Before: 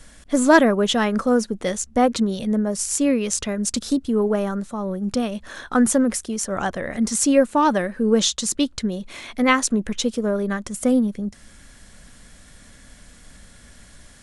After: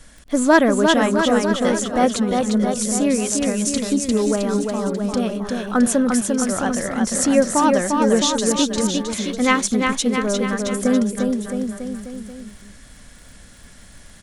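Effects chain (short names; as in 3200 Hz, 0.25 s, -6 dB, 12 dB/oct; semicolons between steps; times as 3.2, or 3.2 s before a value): crackle 22/s -36 dBFS; bouncing-ball echo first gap 0.35 s, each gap 0.9×, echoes 5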